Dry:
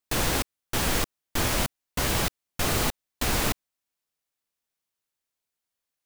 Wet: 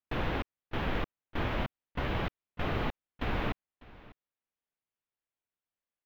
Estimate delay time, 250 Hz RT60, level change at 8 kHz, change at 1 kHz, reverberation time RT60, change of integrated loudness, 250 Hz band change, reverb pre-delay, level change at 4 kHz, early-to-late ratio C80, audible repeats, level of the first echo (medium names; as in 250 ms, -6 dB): 599 ms, no reverb, under -35 dB, -6.0 dB, no reverb, -8.5 dB, -5.0 dB, no reverb, -13.5 dB, no reverb, 1, -21.0 dB